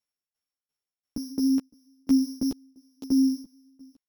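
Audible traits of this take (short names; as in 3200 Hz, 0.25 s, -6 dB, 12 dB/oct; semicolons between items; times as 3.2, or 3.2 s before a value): a buzz of ramps at a fixed pitch in blocks of 8 samples; tremolo saw down 2.9 Hz, depth 95%; a shimmering, thickened sound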